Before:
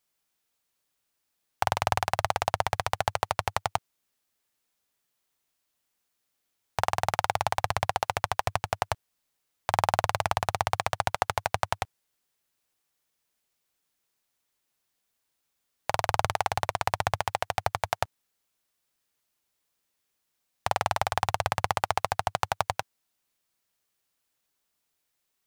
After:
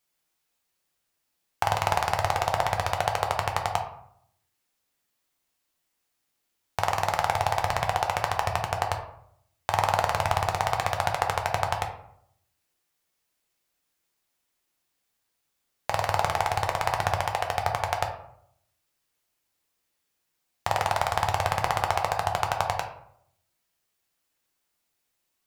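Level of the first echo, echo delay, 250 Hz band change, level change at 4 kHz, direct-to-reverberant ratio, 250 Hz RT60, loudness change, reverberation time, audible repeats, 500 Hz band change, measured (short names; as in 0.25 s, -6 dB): none, none, +2.0 dB, +1.0 dB, 2.5 dB, 0.75 s, +2.5 dB, 0.70 s, none, +2.5 dB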